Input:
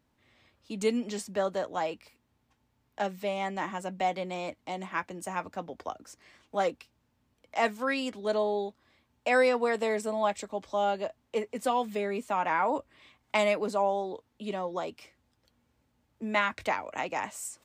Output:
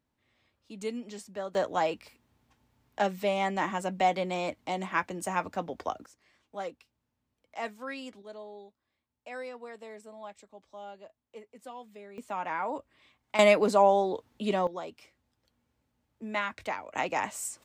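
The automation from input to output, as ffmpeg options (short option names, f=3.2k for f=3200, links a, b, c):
-af "asetnsamples=n=441:p=0,asendcmd='1.55 volume volume 3.5dB;6.06 volume volume -9dB;8.22 volume volume -16.5dB;12.18 volume volume -5.5dB;13.39 volume volume 6dB;14.67 volume volume -4.5dB;16.95 volume volume 2.5dB',volume=-7.5dB"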